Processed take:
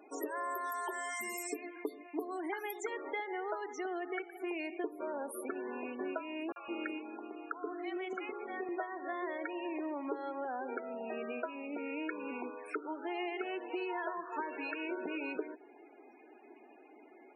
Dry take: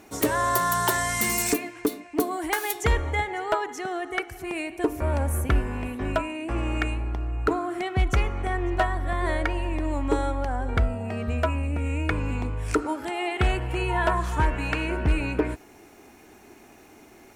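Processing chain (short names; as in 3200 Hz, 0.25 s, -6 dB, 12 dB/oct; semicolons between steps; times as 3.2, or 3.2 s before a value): HPF 280 Hz 24 dB/oct; dynamic EQ 380 Hz, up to +5 dB, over -45 dBFS, Q 4.3; compressor 8:1, threshold -30 dBFS, peak gain reduction 13.5 dB; loudest bins only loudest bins 32; 6.52–8.69 three bands offset in time highs, mids, lows 40/160 ms, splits 670/5600 Hz; gain -4.5 dB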